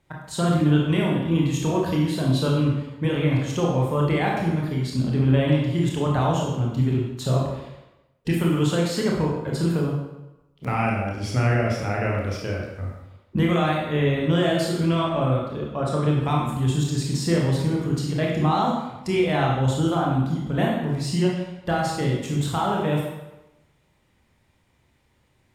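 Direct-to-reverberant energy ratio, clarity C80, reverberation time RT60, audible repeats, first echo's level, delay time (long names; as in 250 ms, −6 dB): −3.0 dB, 4.0 dB, 1.0 s, no echo audible, no echo audible, no echo audible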